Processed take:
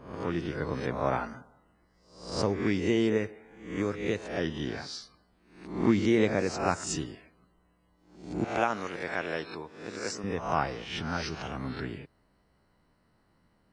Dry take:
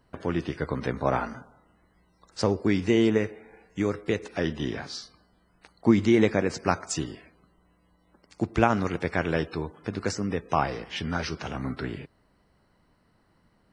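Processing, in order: reverse spectral sustain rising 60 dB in 0.59 s; 8.44–10.24 s: high-pass 500 Hz 6 dB/octave; trim -5 dB

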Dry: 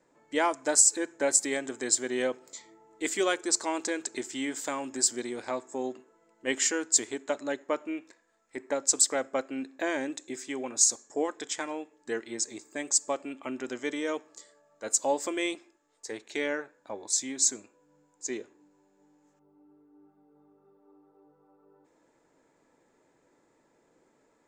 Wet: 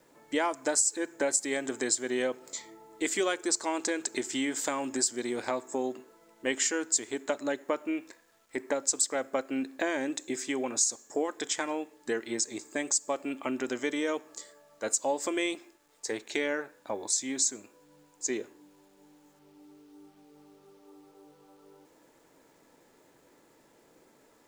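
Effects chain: compression 2.5:1, threshold -34 dBFS, peak gain reduction 12.5 dB; bit crusher 12-bit; trim +5.5 dB

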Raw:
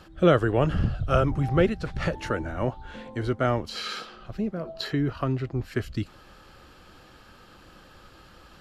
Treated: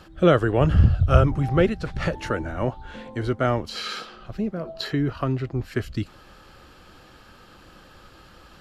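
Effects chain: 0.61–1.27 s: peaking EQ 77 Hz +11 dB 1.2 oct; trim +2 dB

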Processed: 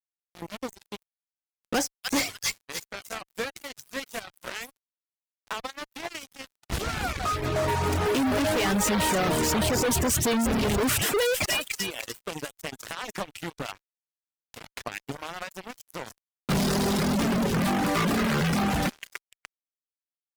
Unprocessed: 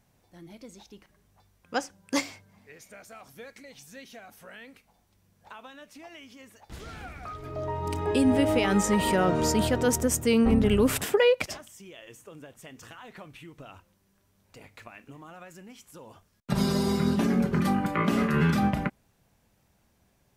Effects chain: feedback echo behind a high-pass 296 ms, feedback 39%, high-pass 2.4 kHz, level -6 dB; fuzz box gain 42 dB, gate -44 dBFS; reverb removal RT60 0.61 s; trim -8.5 dB

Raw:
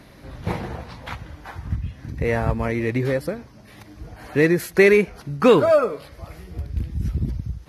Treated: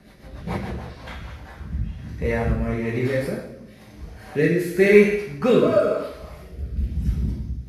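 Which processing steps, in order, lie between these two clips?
two-slope reverb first 0.82 s, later 2.5 s, from -25 dB, DRR -5 dB; rotary cabinet horn 7 Hz, later 1 Hz, at 0.60 s; trim -5 dB

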